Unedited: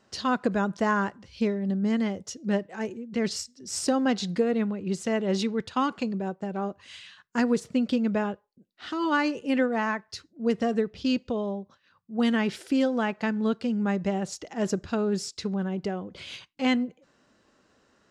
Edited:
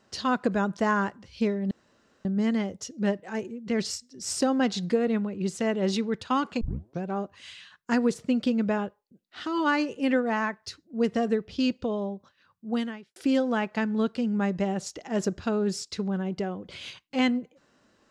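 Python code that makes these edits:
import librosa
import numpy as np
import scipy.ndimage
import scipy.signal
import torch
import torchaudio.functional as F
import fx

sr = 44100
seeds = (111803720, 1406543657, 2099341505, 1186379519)

y = fx.edit(x, sr, fx.insert_room_tone(at_s=1.71, length_s=0.54),
    fx.tape_start(start_s=6.07, length_s=0.43),
    fx.fade_out_span(start_s=12.14, length_s=0.48, curve='qua'), tone=tone)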